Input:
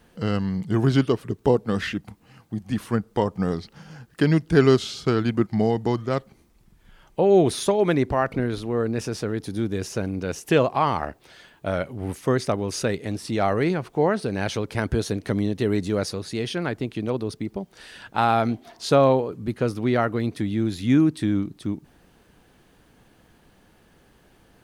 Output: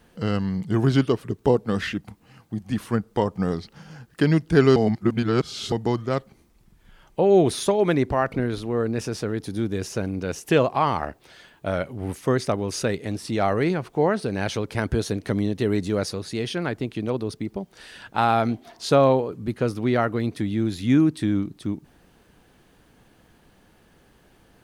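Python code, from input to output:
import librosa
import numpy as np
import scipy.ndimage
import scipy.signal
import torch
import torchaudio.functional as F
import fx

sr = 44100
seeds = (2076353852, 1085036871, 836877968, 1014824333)

y = fx.edit(x, sr, fx.reverse_span(start_s=4.76, length_s=0.96), tone=tone)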